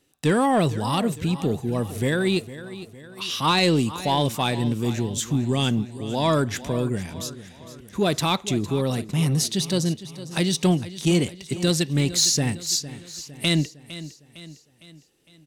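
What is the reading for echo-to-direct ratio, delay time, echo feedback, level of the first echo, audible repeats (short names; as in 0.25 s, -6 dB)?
-13.5 dB, 0.457 s, 50%, -15.0 dB, 4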